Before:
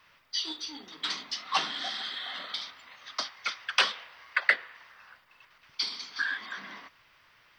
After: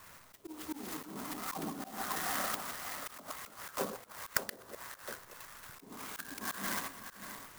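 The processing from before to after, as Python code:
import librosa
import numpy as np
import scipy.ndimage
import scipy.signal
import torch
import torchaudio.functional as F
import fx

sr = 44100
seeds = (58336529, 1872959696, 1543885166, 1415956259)

p1 = fx.reverse_delay(x, sr, ms=125, wet_db=-12)
p2 = fx.env_lowpass_down(p1, sr, base_hz=430.0, full_db=-29.0)
p3 = fx.bass_treble(p2, sr, bass_db=3, treble_db=-14)
p4 = p3 + fx.echo_single(p3, sr, ms=584, db=-10.0, dry=0)
p5 = fx.auto_swell(p4, sr, attack_ms=145.0)
p6 = fx.clock_jitter(p5, sr, seeds[0], jitter_ms=0.09)
y = F.gain(torch.from_numpy(p6), 8.0).numpy()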